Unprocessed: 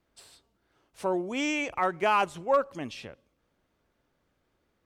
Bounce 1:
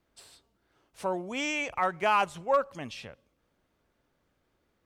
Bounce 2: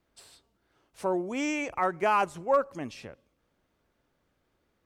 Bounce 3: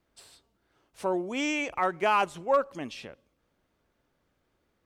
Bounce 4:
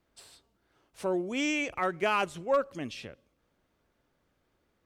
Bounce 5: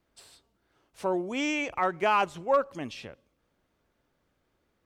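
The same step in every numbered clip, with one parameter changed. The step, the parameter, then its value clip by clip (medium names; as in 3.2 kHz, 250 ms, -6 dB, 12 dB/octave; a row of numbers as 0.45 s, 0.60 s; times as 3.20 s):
dynamic bell, frequency: 330 Hz, 3.3 kHz, 100 Hz, 900 Hz, 9.8 kHz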